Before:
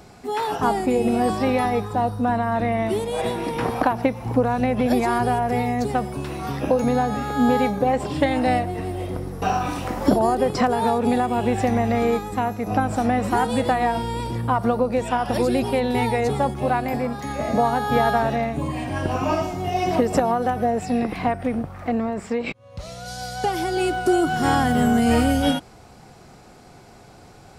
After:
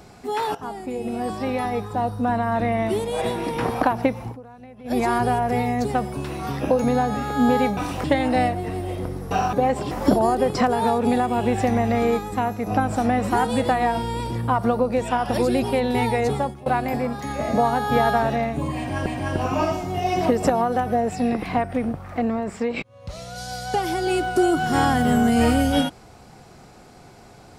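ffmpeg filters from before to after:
ffmpeg -i in.wav -filter_complex "[0:a]asplit=10[link_01][link_02][link_03][link_04][link_05][link_06][link_07][link_08][link_09][link_10];[link_01]atrim=end=0.55,asetpts=PTS-STARTPTS,afade=type=out:start_time=0.546:duration=0.004:curve=hsin:silence=0.199526[link_11];[link_02]atrim=start=0.55:end=4.37,asetpts=PTS-STARTPTS,afade=type=in:duration=1.95:silence=0.199526,afade=type=out:start_time=3.66:duration=0.16:silence=0.0794328[link_12];[link_03]atrim=start=4.37:end=4.84,asetpts=PTS-STARTPTS,volume=-22dB[link_13];[link_04]atrim=start=4.84:end=7.772,asetpts=PTS-STARTPTS,afade=type=in:duration=0.16:silence=0.0794328[link_14];[link_05]atrim=start=9.638:end=9.912[link_15];[link_06]atrim=start=8.148:end=9.642[link_16];[link_07]atrim=start=7.768:end=8.152[link_17];[link_08]atrim=start=9.908:end=16.66,asetpts=PTS-STARTPTS,afade=type=out:start_time=6.422:duration=0.33:silence=0.0749894[link_18];[link_09]atrim=start=16.66:end=19.062,asetpts=PTS-STARTPTS,afade=type=in:duration=0.004:curve=hsin:silence=0.0749894[link_19];[link_10]atrim=start=18.758[link_20];[link_11][link_12][link_13][link_14]concat=n=4:v=0:a=1[link_21];[link_21][link_15]acrossfade=duration=0.004:curve1=hsin:curve2=hsin[link_22];[link_22][link_16]acrossfade=duration=0.004:curve1=hsin:curve2=hsin[link_23];[link_23][link_17]acrossfade=duration=0.004:curve1=hsin:curve2=hsin[link_24];[link_18][link_19]concat=n=2:v=0:a=1[link_25];[link_24][link_25]acrossfade=duration=0.004:curve1=hsin:curve2=hsin[link_26];[link_26][link_20]acrossfade=duration=0.004:curve1=hsin:curve2=hsin" out.wav

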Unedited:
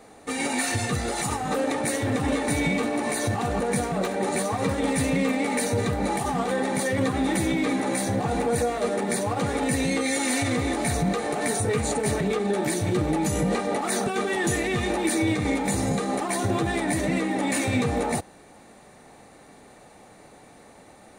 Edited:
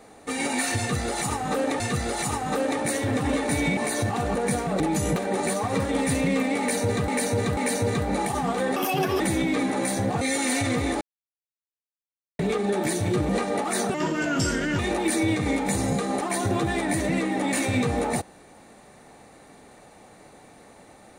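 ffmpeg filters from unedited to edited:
ffmpeg -i in.wav -filter_complex "[0:a]asplit=15[link_01][link_02][link_03][link_04][link_05][link_06][link_07][link_08][link_09][link_10][link_11][link_12][link_13][link_14][link_15];[link_01]atrim=end=1.802[link_16];[link_02]atrim=start=0.788:end=2.762[link_17];[link_03]atrim=start=3.018:end=4.052[link_18];[link_04]atrim=start=13.098:end=13.462[link_19];[link_05]atrim=start=4.048:end=5.972[link_20];[link_06]atrim=start=5.478:end=5.972[link_21];[link_07]atrim=start=5.478:end=6.674[link_22];[link_08]atrim=start=6.67:end=7.3,asetpts=PTS-STARTPTS,asetrate=63063,aresample=44100[link_23];[link_09]atrim=start=7.296:end=8.312[link_24];[link_10]atrim=start=10.018:end=10.82,asetpts=PTS-STARTPTS,afade=type=out:start_time=0.798:duration=0.004:curve=hsin[link_25];[link_11]atrim=start=10.82:end=12.2,asetpts=PTS-STARTPTS,volume=0[link_26];[link_12]atrim=start=12.2:end=13.102,asetpts=PTS-STARTPTS,afade=type=in:duration=0.004:curve=hsin[link_27];[link_13]atrim=start=13.458:end=14.114[link_28];[link_14]atrim=start=14.11:end=14.78,asetpts=PTS-STARTPTS,asetrate=34839,aresample=44100,atrim=end_sample=37401,asetpts=PTS-STARTPTS[link_29];[link_15]atrim=start=14.776[link_30];[link_16][link_17]acrossfade=duration=0.004:curve1=hsin:curve2=hsin[link_31];[link_31][link_18]acrossfade=duration=0.004:curve1=hsin:curve2=hsin[link_32];[link_32][link_19]acrossfade=duration=0.004:curve1=hsin:curve2=hsin[link_33];[link_33][link_20]acrossfade=duration=0.004:curve1=hsin:curve2=hsin[link_34];[link_34][link_21]acrossfade=duration=0.004:curve1=hsin:curve2=hsin[link_35];[link_35][link_22]acrossfade=duration=0.004:curve1=hsin:curve2=hsin[link_36];[link_36][link_23]acrossfade=duration=0.004:curve1=hsin:curve2=hsin[link_37];[link_37][link_24]acrossfade=duration=0.004:curve1=hsin:curve2=hsin[link_38];[link_25][link_26][link_27]concat=n=3:v=0:a=1[link_39];[link_38][link_39]acrossfade=duration=0.004:curve1=hsin:curve2=hsin[link_40];[link_40][link_28]acrossfade=duration=0.004:curve1=hsin:curve2=hsin[link_41];[link_41][link_29]acrossfade=duration=0.004:curve1=hsin:curve2=hsin[link_42];[link_42][link_30]acrossfade=duration=0.004:curve1=hsin:curve2=hsin" out.wav

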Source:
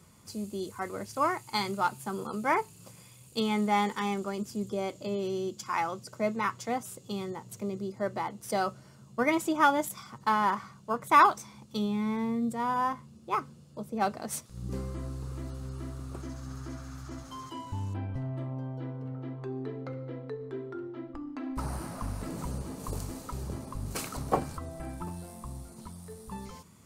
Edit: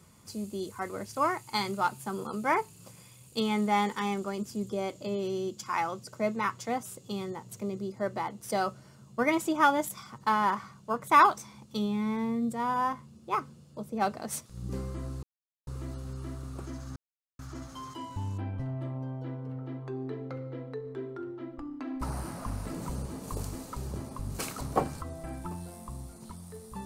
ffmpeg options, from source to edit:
ffmpeg -i in.wav -filter_complex "[0:a]asplit=4[link_01][link_02][link_03][link_04];[link_01]atrim=end=15.23,asetpts=PTS-STARTPTS,afade=type=out:start_time=15.226:duration=0.004:curve=hsin,apad=pad_dur=0.44[link_05];[link_02]atrim=start=15.23:end=16.52,asetpts=PTS-STARTPTS,afade=type=in:duration=0.004:curve=hsin,afade=type=out:start_time=1.286:duration=0.004:curve=hsin[link_06];[link_03]atrim=start=16.52:end=16.95,asetpts=PTS-STARTPTS,volume=0[link_07];[link_04]atrim=start=16.95,asetpts=PTS-STARTPTS,afade=type=in:duration=0.004:curve=hsin[link_08];[link_05][link_06][link_07][link_08]concat=n=4:v=0:a=1" out.wav

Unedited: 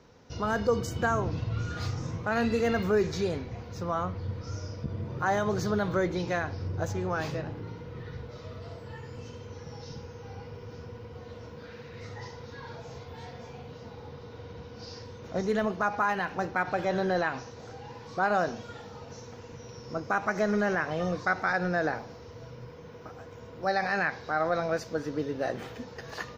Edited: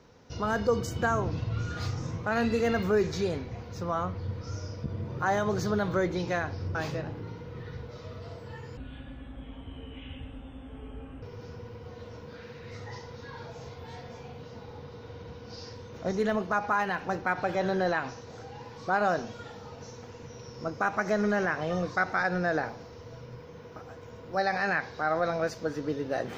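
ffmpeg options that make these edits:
ffmpeg -i in.wav -filter_complex "[0:a]asplit=4[link_01][link_02][link_03][link_04];[link_01]atrim=end=6.752[link_05];[link_02]atrim=start=7.148:end=9.174[link_06];[link_03]atrim=start=9.17:end=10.52,asetpts=PTS-STARTPTS,asetrate=24255,aresample=44100,atrim=end_sample=108245,asetpts=PTS-STARTPTS[link_07];[link_04]atrim=start=10.516[link_08];[link_05][link_06]acrossfade=duration=0.004:curve1=hsin:curve2=hsin[link_09];[link_09][link_07]acrossfade=duration=0.004:curve1=hsin:curve2=hsin[link_10];[link_10][link_08]acrossfade=duration=0.004:curve1=hsin:curve2=hsin" out.wav

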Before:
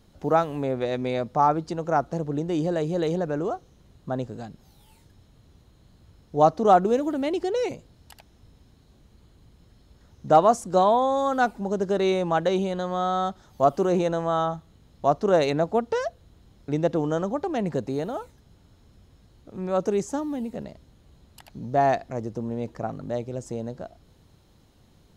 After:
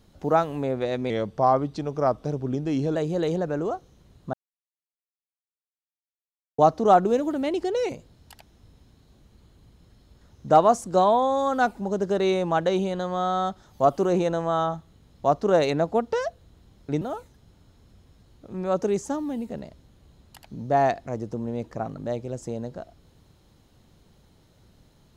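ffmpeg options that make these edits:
ffmpeg -i in.wav -filter_complex "[0:a]asplit=6[link_01][link_02][link_03][link_04][link_05][link_06];[link_01]atrim=end=1.104[link_07];[link_02]atrim=start=1.1:end=2.75,asetpts=PTS-STARTPTS,asetrate=39249,aresample=44100,atrim=end_sample=81758,asetpts=PTS-STARTPTS[link_08];[link_03]atrim=start=2.746:end=4.13,asetpts=PTS-STARTPTS,afade=type=out:start_time=1.38:duration=0.004:curve=hsin[link_09];[link_04]atrim=start=4.13:end=6.38,asetpts=PTS-STARTPTS,volume=0[link_10];[link_05]atrim=start=6.38:end=16.812,asetpts=PTS-STARTPTS,afade=type=in:duration=0.004:curve=hsin[link_11];[link_06]atrim=start=18.048[link_12];[link_07][link_08]acrossfade=duration=0.004:curve1=hsin:curve2=hsin[link_13];[link_09][link_10][link_11]concat=n=3:v=0:a=1[link_14];[link_13][link_14]acrossfade=duration=0.004:curve1=hsin:curve2=hsin[link_15];[link_15][link_12]acrossfade=duration=0.004:curve1=hsin:curve2=hsin" out.wav

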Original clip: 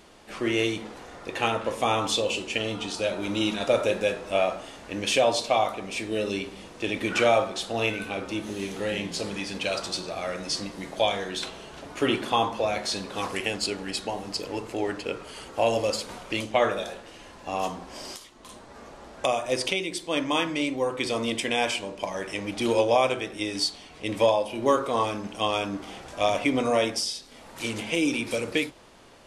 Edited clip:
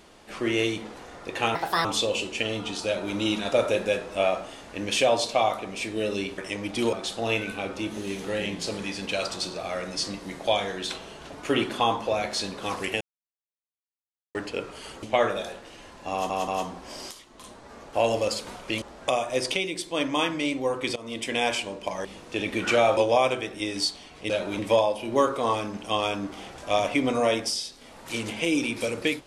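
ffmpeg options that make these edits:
ffmpeg -i in.wav -filter_complex "[0:a]asplit=17[link_01][link_02][link_03][link_04][link_05][link_06][link_07][link_08][link_09][link_10][link_11][link_12][link_13][link_14][link_15][link_16][link_17];[link_01]atrim=end=1.554[link_18];[link_02]atrim=start=1.55:end=2,asetpts=PTS-STARTPTS,asetrate=66591,aresample=44100,atrim=end_sample=13142,asetpts=PTS-STARTPTS[link_19];[link_03]atrim=start=1.996:end=6.532[link_20];[link_04]atrim=start=22.208:end=22.762[link_21];[link_05]atrim=start=7.448:end=13.53,asetpts=PTS-STARTPTS,afade=type=out:start_time=6.078:duration=0.004:curve=hsin[link_22];[link_06]atrim=start=13.53:end=14.87,asetpts=PTS-STARTPTS,volume=0[link_23];[link_07]atrim=start=14.87:end=15.552,asetpts=PTS-STARTPTS,afade=type=in:duration=0.004:curve=hsin[link_24];[link_08]atrim=start=16.438:end=17.712[link_25];[link_09]atrim=start=17.528:end=17.712[link_26];[link_10]atrim=start=17.528:end=18.982[link_27];[link_11]atrim=start=15.548:end=16.442[link_28];[link_12]atrim=start=18.978:end=21.12,asetpts=PTS-STARTPTS,afade=type=out:start_time=2.138:duration=0.004:curve=hsin:silence=0.112202[link_29];[link_13]atrim=start=21.12:end=22.212,asetpts=PTS-STARTPTS,afade=type=in:duration=0.41:silence=0.112202[link_30];[link_14]atrim=start=6.528:end=7.452[link_31];[link_15]atrim=start=22.758:end=24.092[link_32];[link_16]atrim=start=3.008:end=3.302[link_33];[link_17]atrim=start=24.088[link_34];[link_18][link_19]acrossfade=duration=0.004:curve1=hsin:curve2=hsin[link_35];[link_35][link_20]acrossfade=duration=0.004:curve1=hsin:curve2=hsin[link_36];[link_36][link_21]acrossfade=duration=0.004:curve1=hsin:curve2=hsin[link_37];[link_22][link_23][link_24]concat=n=3:v=0:a=1[link_38];[link_37][link_38]acrossfade=duration=0.004:curve1=hsin:curve2=hsin[link_39];[link_39][link_25]acrossfade=duration=0.004:curve1=hsin:curve2=hsin[link_40];[link_40][link_26]acrossfade=duration=0.004:curve1=hsin:curve2=hsin[link_41];[link_41][link_27]acrossfade=duration=0.004:curve1=hsin:curve2=hsin[link_42];[link_42][link_28]acrossfade=duration=0.004:curve1=hsin:curve2=hsin[link_43];[link_29][link_30]concat=n=2:v=0:a=1[link_44];[link_43][link_44]acrossfade=duration=0.004:curve1=hsin:curve2=hsin[link_45];[link_45][link_31]acrossfade=duration=0.004:curve1=hsin:curve2=hsin[link_46];[link_46][link_32]acrossfade=duration=0.004:curve1=hsin:curve2=hsin[link_47];[link_47][link_33]acrossfade=duration=0.004:curve1=hsin:curve2=hsin[link_48];[link_48][link_34]acrossfade=duration=0.004:curve1=hsin:curve2=hsin" out.wav

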